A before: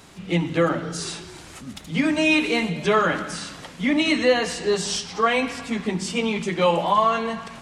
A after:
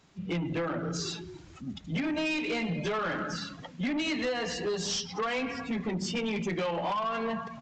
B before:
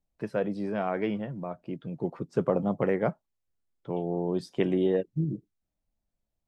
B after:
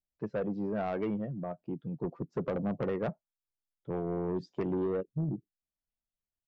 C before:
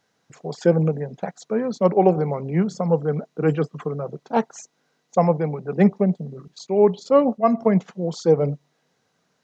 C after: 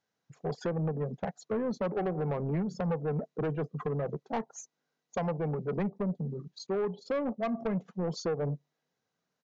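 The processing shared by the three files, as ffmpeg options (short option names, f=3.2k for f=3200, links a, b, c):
-af "afftdn=nr=15:nf=-34,acompressor=threshold=-23dB:ratio=12,aresample=16000,asoftclip=type=tanh:threshold=-26dB,aresample=44100"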